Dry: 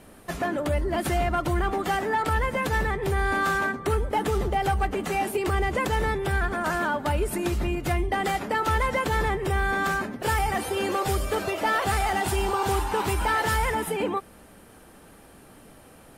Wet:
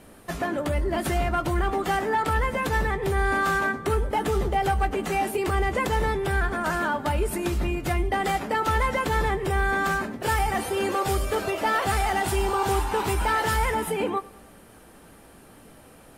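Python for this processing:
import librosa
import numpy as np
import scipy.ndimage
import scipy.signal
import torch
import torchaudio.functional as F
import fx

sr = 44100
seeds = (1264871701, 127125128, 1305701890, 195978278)

y = fx.doubler(x, sr, ms=18.0, db=-12.0)
y = fx.echo_feedback(y, sr, ms=99, feedback_pct=53, wet_db=-22.5)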